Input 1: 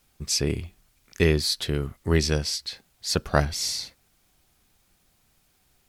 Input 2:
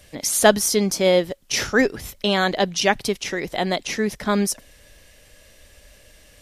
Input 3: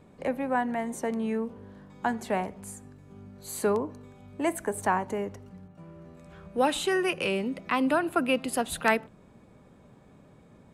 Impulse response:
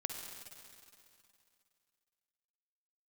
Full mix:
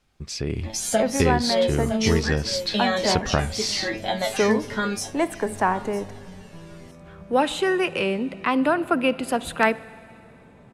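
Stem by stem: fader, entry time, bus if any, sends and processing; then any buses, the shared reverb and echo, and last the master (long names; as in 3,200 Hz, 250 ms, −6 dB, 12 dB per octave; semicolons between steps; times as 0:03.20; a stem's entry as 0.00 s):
−0.5 dB, 0.00 s, bus A, no send, no echo send, high-shelf EQ 4,600 Hz −5 dB
+2.0 dB, 0.50 s, bus A, no send, echo send −18.5 dB, tuned comb filter 110 Hz, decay 0.23 s, harmonics all, mix 100%; flanger whose copies keep moving one way falling 0.62 Hz
−9.0 dB, 0.75 s, no bus, send −13.5 dB, no echo send, high-shelf EQ 10,000 Hz −5.5 dB
bus A: 0.0 dB, Bessel low-pass filter 9,000 Hz, order 2; downward compressor 4 to 1, threshold −32 dBFS, peak gain reduction 14.5 dB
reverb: on, RT60 2.6 s, pre-delay 46 ms
echo: repeating echo 955 ms, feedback 17%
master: high-shelf EQ 6,600 Hz −5.5 dB; automatic gain control gain up to 12 dB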